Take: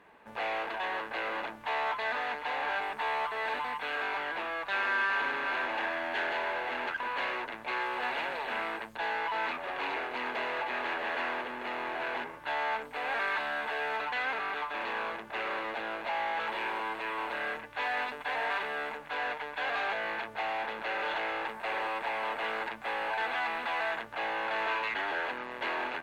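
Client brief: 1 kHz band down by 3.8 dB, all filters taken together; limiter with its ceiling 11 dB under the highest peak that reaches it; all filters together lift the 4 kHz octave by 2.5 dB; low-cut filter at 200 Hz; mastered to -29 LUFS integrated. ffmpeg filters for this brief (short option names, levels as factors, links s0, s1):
-af "highpass=200,equalizer=f=1000:t=o:g=-5,equalizer=f=4000:t=o:g=4,volume=3.35,alimiter=limit=0.0841:level=0:latency=1"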